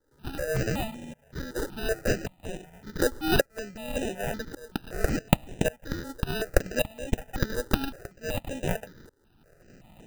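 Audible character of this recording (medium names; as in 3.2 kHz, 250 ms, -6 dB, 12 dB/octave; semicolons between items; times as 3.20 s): a buzz of ramps at a fixed pitch in blocks of 8 samples; tremolo saw up 0.88 Hz, depth 95%; aliases and images of a low sample rate 1.1 kHz, jitter 0%; notches that jump at a steady rate 5.3 Hz 690–4600 Hz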